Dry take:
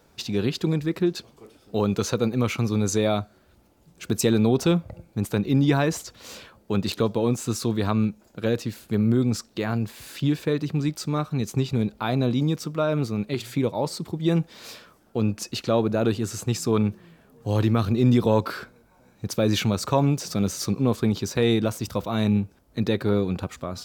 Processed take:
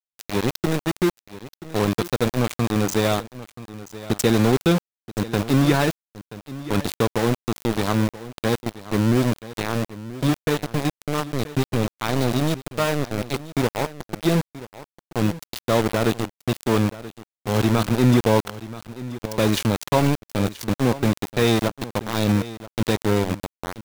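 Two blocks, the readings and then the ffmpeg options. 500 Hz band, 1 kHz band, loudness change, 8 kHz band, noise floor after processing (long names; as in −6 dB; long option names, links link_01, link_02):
+2.0 dB, +5.0 dB, +2.0 dB, +0.5 dB, below −85 dBFS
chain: -af "aeval=exprs='val(0)*gte(abs(val(0)),0.0794)':channel_layout=same,aecho=1:1:980:0.158,volume=2.5dB"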